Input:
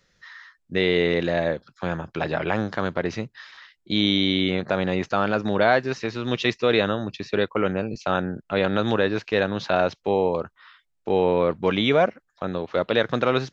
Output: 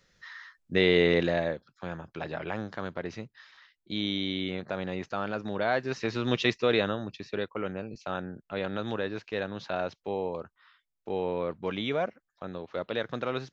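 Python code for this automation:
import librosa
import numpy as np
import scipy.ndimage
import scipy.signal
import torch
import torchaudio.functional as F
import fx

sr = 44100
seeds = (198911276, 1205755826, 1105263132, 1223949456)

y = fx.gain(x, sr, db=fx.line((1.19, -1.5), (1.69, -10.0), (5.63, -10.0), (6.16, -1.0), (7.52, -10.5)))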